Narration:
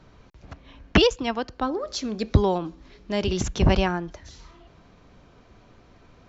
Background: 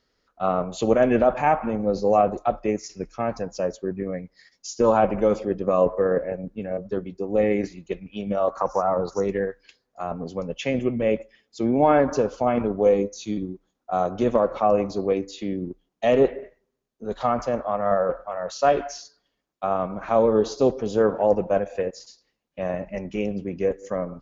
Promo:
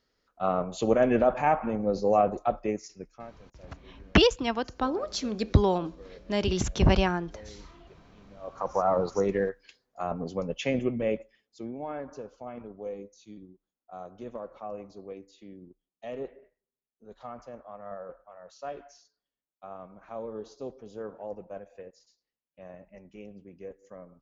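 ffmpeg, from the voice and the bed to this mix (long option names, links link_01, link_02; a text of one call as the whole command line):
ffmpeg -i stem1.wav -i stem2.wav -filter_complex "[0:a]adelay=3200,volume=-2dB[link_01];[1:a]volume=21.5dB,afade=type=out:start_time=2.55:duration=0.81:silence=0.0668344,afade=type=in:start_time=8.4:duration=0.47:silence=0.0530884,afade=type=out:start_time=10.53:duration=1.25:silence=0.141254[link_02];[link_01][link_02]amix=inputs=2:normalize=0" out.wav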